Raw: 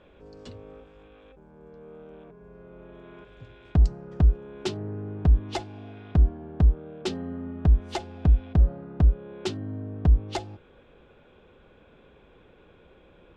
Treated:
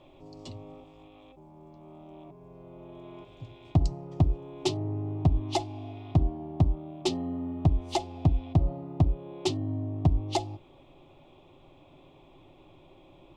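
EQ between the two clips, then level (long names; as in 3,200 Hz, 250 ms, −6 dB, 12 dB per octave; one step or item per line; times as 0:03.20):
phaser with its sweep stopped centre 310 Hz, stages 8
+4.5 dB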